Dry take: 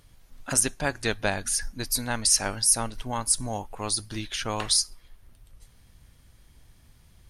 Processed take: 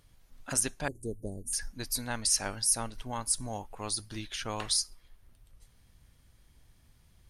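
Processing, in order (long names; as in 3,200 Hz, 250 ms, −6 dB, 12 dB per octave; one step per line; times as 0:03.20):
0:00.88–0:01.53: elliptic band-stop filter 440–8,400 Hz, stop band 80 dB
level −6 dB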